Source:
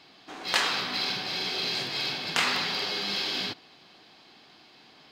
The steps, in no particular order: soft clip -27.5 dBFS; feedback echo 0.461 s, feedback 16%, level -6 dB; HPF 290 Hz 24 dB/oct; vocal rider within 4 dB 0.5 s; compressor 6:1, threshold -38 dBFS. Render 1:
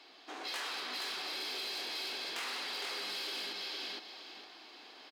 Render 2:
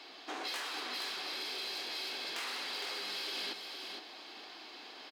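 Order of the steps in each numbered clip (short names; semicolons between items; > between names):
vocal rider > feedback echo > soft clip > compressor > HPF; soft clip > HPF > compressor > vocal rider > feedback echo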